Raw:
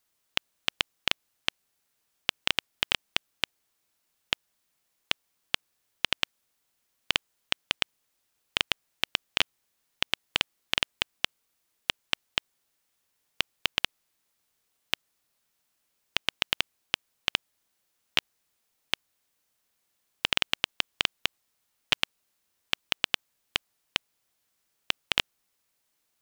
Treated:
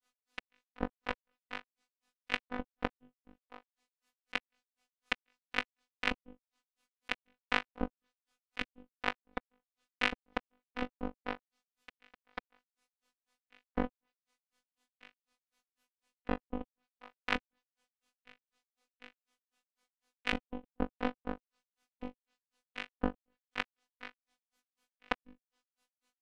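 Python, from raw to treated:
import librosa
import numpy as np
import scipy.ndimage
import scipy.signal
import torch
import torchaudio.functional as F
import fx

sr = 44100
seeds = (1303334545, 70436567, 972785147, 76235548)

y = scipy.signal.sosfilt(scipy.signal.butter(2, 12000.0, 'lowpass', fs=sr, output='sos'), x)
y = fx.high_shelf(y, sr, hz=3700.0, db=-3.5)
y = fx.notch_comb(y, sr, f0_hz=220.0)
y = fx.env_lowpass_down(y, sr, base_hz=380.0, full_db=-33.5)
y = fx.high_shelf(y, sr, hz=8800.0, db=-9.0)
y = fx.room_flutter(y, sr, wall_m=3.4, rt60_s=0.24)
y = fx.granulator(y, sr, seeds[0], grain_ms=148.0, per_s=4.0, spray_ms=11.0, spread_st=0)
y = fx.robotise(y, sr, hz=249.0)
y = fx.over_compress(y, sr, threshold_db=-41.0, ratio=-0.5)
y = fx.noise_reduce_blind(y, sr, reduce_db=6)
y = y * 10.0 ** (9.5 / 20.0)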